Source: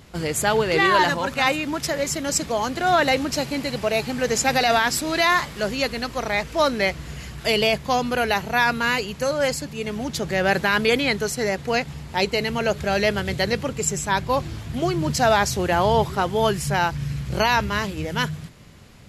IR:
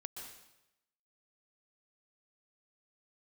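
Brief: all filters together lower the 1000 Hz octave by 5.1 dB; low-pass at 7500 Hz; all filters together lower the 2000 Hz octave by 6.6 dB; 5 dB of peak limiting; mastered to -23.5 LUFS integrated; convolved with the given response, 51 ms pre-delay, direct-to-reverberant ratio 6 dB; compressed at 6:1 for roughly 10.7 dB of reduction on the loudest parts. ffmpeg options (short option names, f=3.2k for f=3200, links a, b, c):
-filter_complex "[0:a]lowpass=7.5k,equalizer=f=1k:t=o:g=-5.5,equalizer=f=2k:t=o:g=-6.5,acompressor=threshold=-29dB:ratio=6,alimiter=limit=-23.5dB:level=0:latency=1,asplit=2[a][b];[1:a]atrim=start_sample=2205,adelay=51[c];[b][c]afir=irnorm=-1:irlink=0,volume=-3dB[d];[a][d]amix=inputs=2:normalize=0,volume=9.5dB"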